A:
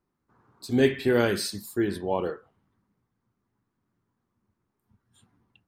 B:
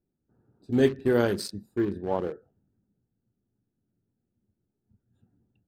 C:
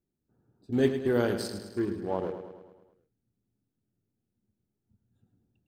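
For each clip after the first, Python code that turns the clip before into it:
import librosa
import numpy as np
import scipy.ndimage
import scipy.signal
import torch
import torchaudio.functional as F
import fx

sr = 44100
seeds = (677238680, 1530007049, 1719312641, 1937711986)

y1 = fx.wiener(x, sr, points=41)
y1 = fx.dynamic_eq(y1, sr, hz=2400.0, q=1.6, threshold_db=-46.0, ratio=4.0, max_db=-7)
y2 = fx.echo_feedback(y1, sr, ms=106, feedback_pct=57, wet_db=-9.5)
y2 = y2 * librosa.db_to_amplitude(-3.5)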